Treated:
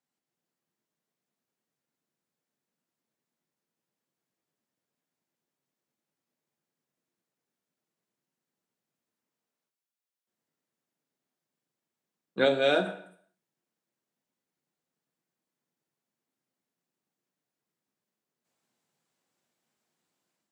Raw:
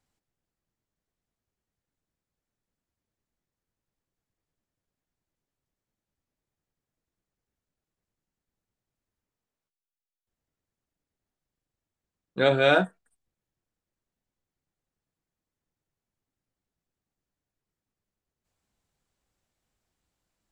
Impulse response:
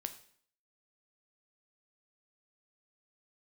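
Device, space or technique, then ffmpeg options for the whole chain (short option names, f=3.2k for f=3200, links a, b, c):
far laptop microphone: -filter_complex "[1:a]atrim=start_sample=2205[a];[0:a][a]afir=irnorm=-1:irlink=0,highpass=f=160:w=0.5412,highpass=f=160:w=1.3066,dynaudnorm=f=100:g=5:m=9.5dB,asettb=1/sr,asplit=3[b][c][d];[b]atrim=end=12.454[e];[c]atrim=start=12.45:end=12.86,asetpts=PTS-STARTPTS,afade=t=in:d=0.004:c=qsin,afade=t=out:st=0.406:d=0.004:c=qsin,equalizer=f=125:t=o:w=1:g=-8,equalizer=f=1k:t=o:w=1:g=-8,equalizer=f=2k:t=o:w=1:g=-5[f];[d]atrim=start=12.856[g];[e][f]acrossfade=d=0.004:c1=hsin:c2=qsin[h];[h][g]acrossfade=d=0.004:c1=qsin:c2=hsin,volume=-6.5dB"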